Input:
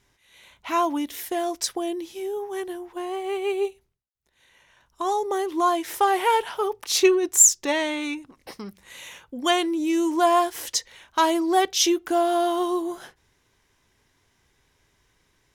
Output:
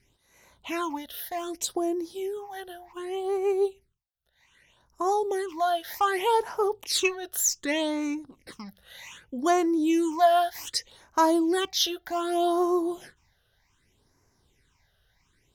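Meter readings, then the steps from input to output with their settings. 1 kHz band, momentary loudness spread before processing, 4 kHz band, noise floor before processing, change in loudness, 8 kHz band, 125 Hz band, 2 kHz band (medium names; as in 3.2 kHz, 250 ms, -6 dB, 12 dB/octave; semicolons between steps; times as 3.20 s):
-3.5 dB, 15 LU, -3.0 dB, -68 dBFS, -3.5 dB, -9.5 dB, no reading, -3.5 dB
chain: phase shifter stages 8, 0.65 Hz, lowest notch 290–3300 Hz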